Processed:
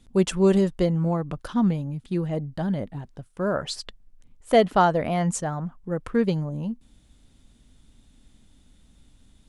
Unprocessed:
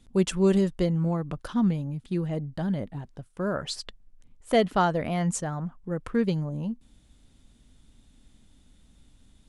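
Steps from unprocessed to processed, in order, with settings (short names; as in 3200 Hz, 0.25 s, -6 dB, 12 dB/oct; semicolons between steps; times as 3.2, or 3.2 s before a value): dynamic EQ 720 Hz, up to +4 dB, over -35 dBFS, Q 0.86; gain +1.5 dB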